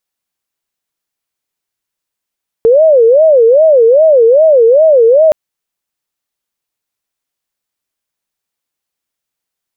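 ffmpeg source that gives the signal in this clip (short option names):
-f lavfi -i "aevalsrc='0.708*sin(2*PI*(546.5*t-96.5/(2*PI*2.5)*sin(2*PI*2.5*t)))':d=2.67:s=44100"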